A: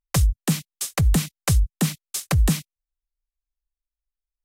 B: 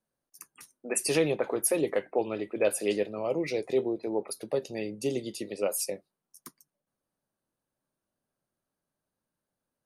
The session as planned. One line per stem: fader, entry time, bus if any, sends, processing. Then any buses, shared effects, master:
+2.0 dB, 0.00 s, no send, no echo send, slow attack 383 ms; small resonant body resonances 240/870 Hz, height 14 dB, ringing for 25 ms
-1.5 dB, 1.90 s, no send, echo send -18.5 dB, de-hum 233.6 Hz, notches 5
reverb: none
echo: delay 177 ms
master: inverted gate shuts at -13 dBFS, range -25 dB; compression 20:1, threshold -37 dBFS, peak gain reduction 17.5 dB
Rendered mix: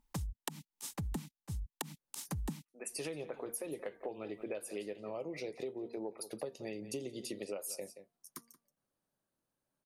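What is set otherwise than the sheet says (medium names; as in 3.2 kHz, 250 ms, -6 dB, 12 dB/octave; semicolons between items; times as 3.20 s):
stem A +2.0 dB -> +9.5 dB; master: missing inverted gate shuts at -13 dBFS, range -25 dB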